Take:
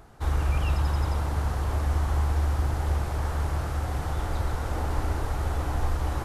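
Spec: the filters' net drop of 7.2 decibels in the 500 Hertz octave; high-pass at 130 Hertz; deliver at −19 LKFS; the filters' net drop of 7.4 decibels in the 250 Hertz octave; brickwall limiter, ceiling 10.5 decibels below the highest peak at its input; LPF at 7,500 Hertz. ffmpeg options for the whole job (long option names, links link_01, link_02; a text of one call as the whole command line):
ffmpeg -i in.wav -af "highpass=130,lowpass=7500,equalizer=frequency=250:width_type=o:gain=-7.5,equalizer=frequency=500:width_type=o:gain=-7.5,volume=23dB,alimiter=limit=-10dB:level=0:latency=1" out.wav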